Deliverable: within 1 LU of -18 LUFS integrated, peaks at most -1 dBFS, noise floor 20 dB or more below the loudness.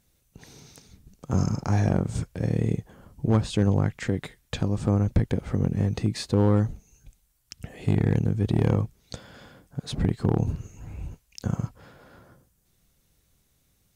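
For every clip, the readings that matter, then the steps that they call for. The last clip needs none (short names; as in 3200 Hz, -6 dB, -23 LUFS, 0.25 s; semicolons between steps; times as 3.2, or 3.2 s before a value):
clipped 0.3%; flat tops at -13.5 dBFS; loudness -26.0 LUFS; peak -13.5 dBFS; loudness target -18.0 LUFS
-> clip repair -13.5 dBFS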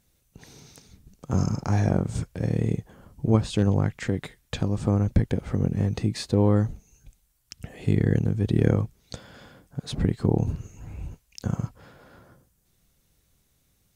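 clipped 0.0%; loudness -25.5 LUFS; peak -6.5 dBFS; loudness target -18.0 LUFS
-> gain +7.5 dB; limiter -1 dBFS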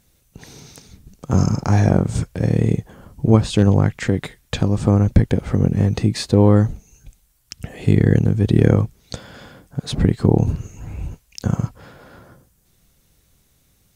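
loudness -18.0 LUFS; peak -1.0 dBFS; noise floor -61 dBFS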